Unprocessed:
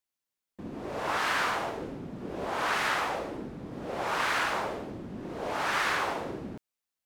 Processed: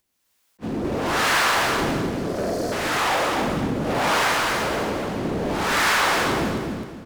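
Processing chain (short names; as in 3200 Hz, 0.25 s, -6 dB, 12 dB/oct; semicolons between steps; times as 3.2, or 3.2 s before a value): spectral delete 1.97–2.72, 750–4100 Hz; de-hum 46.66 Hz, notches 35; sample leveller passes 5; upward compressor, threshold -42 dBFS; harmonic tremolo 1.1 Hz, depth 70%, crossover 460 Hz; on a send: feedback echo 0.257 s, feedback 34%, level -3.5 dB; on the sum: attack slew limiter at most 540 dB/s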